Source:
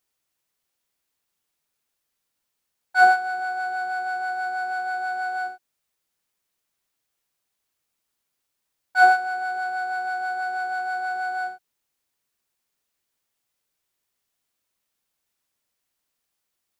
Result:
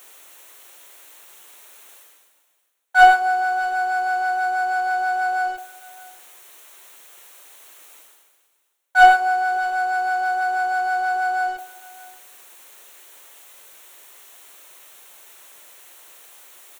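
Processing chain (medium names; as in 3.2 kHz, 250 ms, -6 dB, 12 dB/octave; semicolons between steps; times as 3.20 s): high-pass 360 Hz 24 dB/octave; peaking EQ 4.9 kHz -13 dB 0.27 oct; waveshaping leveller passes 1; reverse; upward compressor, threshold -24 dBFS; reverse; delay 617 ms -22.5 dB; on a send at -13 dB: reverberation RT60 0.70 s, pre-delay 3 ms; on the sum: trim +3 dB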